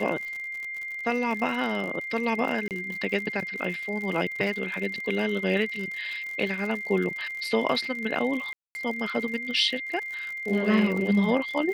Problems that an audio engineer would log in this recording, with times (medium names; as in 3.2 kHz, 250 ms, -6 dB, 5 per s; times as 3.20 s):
crackle 68 per s -33 dBFS
whine 2.1 kHz -32 dBFS
2.68–2.71 s: dropout 28 ms
8.53–8.75 s: dropout 220 ms